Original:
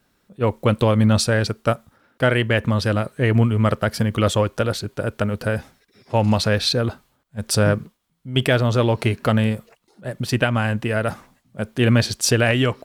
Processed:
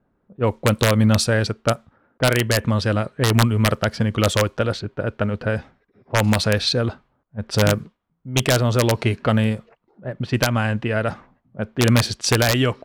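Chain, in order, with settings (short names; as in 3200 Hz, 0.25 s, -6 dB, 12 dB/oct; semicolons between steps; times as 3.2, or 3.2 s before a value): wrapped overs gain 7.5 dB; low-pass opened by the level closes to 940 Hz, open at -14 dBFS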